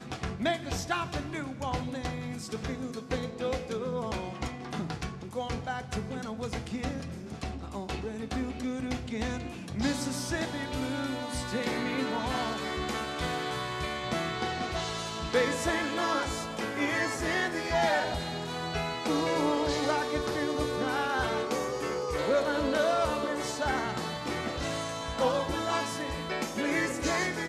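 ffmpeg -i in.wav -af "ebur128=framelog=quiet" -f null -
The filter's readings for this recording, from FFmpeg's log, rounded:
Integrated loudness:
  I:         -31.6 LUFS
  Threshold: -41.6 LUFS
Loudness range:
  LRA:         6.3 LU
  Threshold: -51.6 LUFS
  LRA low:   -35.7 LUFS
  LRA high:  -29.3 LUFS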